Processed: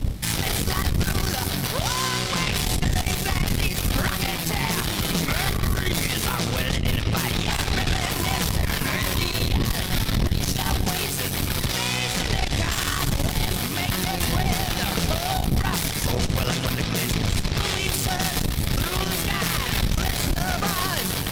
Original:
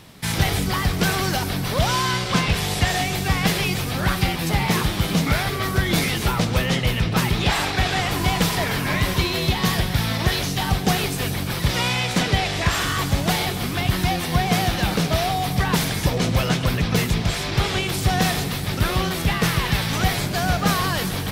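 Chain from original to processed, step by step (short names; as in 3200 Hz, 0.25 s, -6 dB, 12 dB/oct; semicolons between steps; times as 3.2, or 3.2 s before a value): wind noise 88 Hz -17 dBFS; high shelf 4000 Hz +7 dB; limiter -13.5 dBFS, peak gain reduction 17.5 dB; added harmonics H 2 -6 dB, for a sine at -13.5 dBFS; gain -2 dB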